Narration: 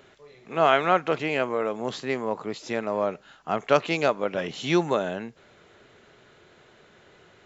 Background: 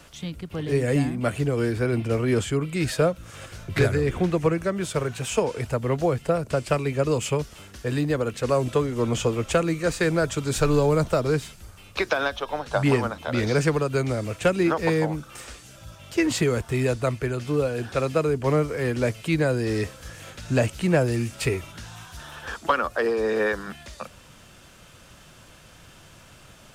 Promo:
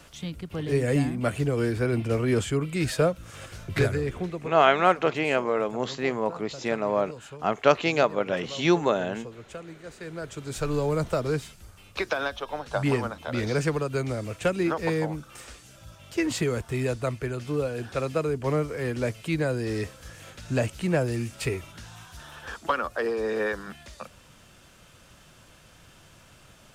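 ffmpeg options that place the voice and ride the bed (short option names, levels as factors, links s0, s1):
-filter_complex "[0:a]adelay=3950,volume=1.12[s0];[1:a]volume=4.47,afade=t=out:st=3.69:d=0.87:silence=0.141254,afade=t=in:st=9.99:d=1.11:silence=0.188365[s1];[s0][s1]amix=inputs=2:normalize=0"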